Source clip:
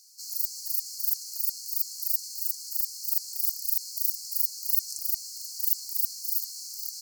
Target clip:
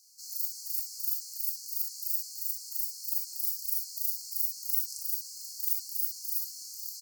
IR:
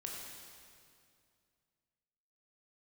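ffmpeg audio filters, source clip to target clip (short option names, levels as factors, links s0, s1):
-filter_complex "[0:a]acrossover=split=3300[s0][s1];[s0]adelay=40[s2];[s2][s1]amix=inputs=2:normalize=0[s3];[1:a]atrim=start_sample=2205,atrim=end_sample=3087[s4];[s3][s4]afir=irnorm=-1:irlink=0"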